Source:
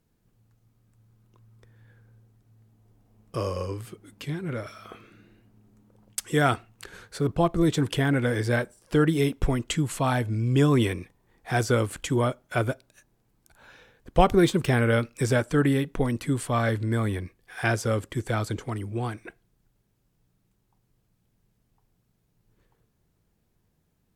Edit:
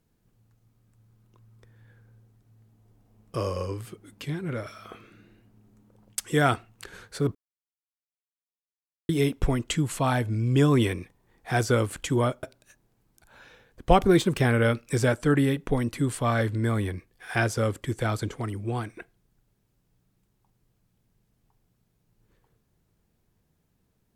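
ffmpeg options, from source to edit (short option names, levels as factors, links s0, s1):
-filter_complex "[0:a]asplit=4[s0][s1][s2][s3];[s0]atrim=end=7.35,asetpts=PTS-STARTPTS,afade=t=out:st=7.346:d=0.004:c=hsin[s4];[s1]atrim=start=7.35:end=9.09,asetpts=PTS-STARTPTS,volume=0[s5];[s2]atrim=start=9.09:end=12.432,asetpts=PTS-STARTPTS,afade=t=in:d=0.004:c=hsin[s6];[s3]atrim=start=12.708[s7];[s4][s5][s6]concat=n=3:v=0:a=1[s8];[s8][s7]acrossfade=d=0.004:c1=hsin:c2=hsin"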